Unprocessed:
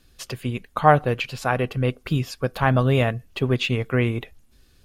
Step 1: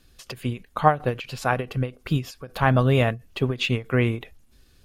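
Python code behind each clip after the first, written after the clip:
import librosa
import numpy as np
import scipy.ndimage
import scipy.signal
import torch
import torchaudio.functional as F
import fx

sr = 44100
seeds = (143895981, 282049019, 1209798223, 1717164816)

y = fx.end_taper(x, sr, db_per_s=230.0)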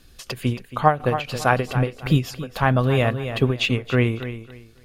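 y = fx.echo_feedback(x, sr, ms=275, feedback_pct=24, wet_db=-12)
y = fx.rider(y, sr, range_db=3, speed_s=0.5)
y = y * 10.0 ** (2.5 / 20.0)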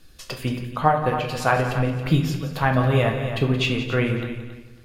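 y = x + 10.0 ** (-12.0 / 20.0) * np.pad(x, (int(175 * sr / 1000.0), 0))[:len(x)]
y = fx.room_shoebox(y, sr, seeds[0], volume_m3=98.0, walls='mixed', distance_m=0.58)
y = y * 10.0 ** (-2.5 / 20.0)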